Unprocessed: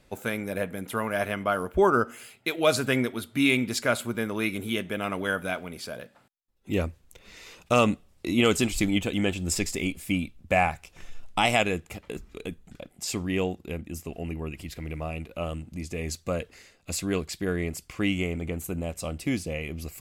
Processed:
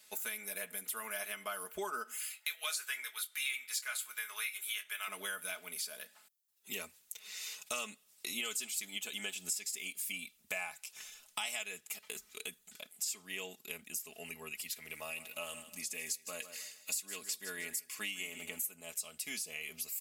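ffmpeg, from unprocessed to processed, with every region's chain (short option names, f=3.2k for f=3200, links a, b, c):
-filter_complex "[0:a]asettb=1/sr,asplit=3[a][b][c];[a]atrim=end=2.204[d];[b]atrim=start=2.2:end=5.08,asetpts=PTS-STARTPTS,afade=t=in:d=0.004:c=qsin,afade=t=out:st=2.876:d=0.004:c=qsin,highpass=980,equalizer=f=1.6k:w=0.82:g=5,asplit=2[e][f];[f]adelay=23,volume=-11.5dB[g];[e][g]amix=inputs=2:normalize=0,atrim=end_sample=127008[h];[c]atrim=start=5.076[i];[d][h]acrossfade=d=0.004:c1=hsin:c2=qsin[j];[j][i]acrossfade=d=0.004:c1=qsin:c2=hsin,asettb=1/sr,asplit=3[k][l][m];[k]atrim=end=14.934[n];[l]atrim=start=14.93:end=18.74,asetpts=PTS-STARTPTS,afade=t=in:d=0.004:c=qsin,afade=t=out:st=3.806:d=0.004:c=qsin,highshelf=f=11k:g=4,aecho=1:1:3.6:0.32,atrim=end_sample=168021,aecho=1:1:155|310|465:0.188|0.0527|0.0148,atrim=end_sample=168021[o];[m]atrim=start=18.736[p];[n][o]acrossfade=d=0.004:c1=hsin:c2=qsin[q];[q][p]acrossfade=d=0.004:c1=qsin:c2=hsin,aderivative,aecho=1:1:4.7:0.75,acompressor=threshold=-46dB:ratio=4,volume=8dB"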